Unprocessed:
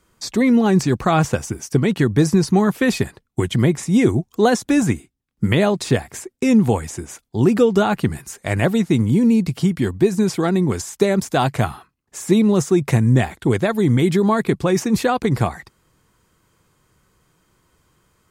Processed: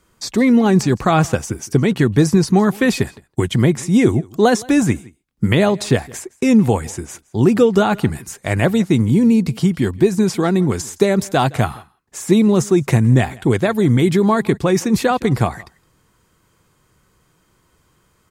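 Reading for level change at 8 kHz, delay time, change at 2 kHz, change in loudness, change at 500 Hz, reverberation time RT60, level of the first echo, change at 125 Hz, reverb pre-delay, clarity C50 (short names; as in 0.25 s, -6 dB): +2.0 dB, 0.165 s, +2.0 dB, +2.0 dB, +2.0 dB, none, -23.5 dB, +2.0 dB, none, none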